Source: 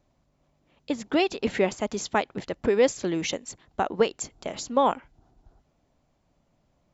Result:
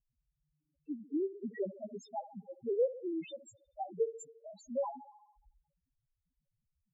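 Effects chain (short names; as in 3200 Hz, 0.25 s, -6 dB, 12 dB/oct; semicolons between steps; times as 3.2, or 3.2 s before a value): thinning echo 70 ms, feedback 67%, high-pass 170 Hz, level -15 dB; loudest bins only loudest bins 1; gain -4 dB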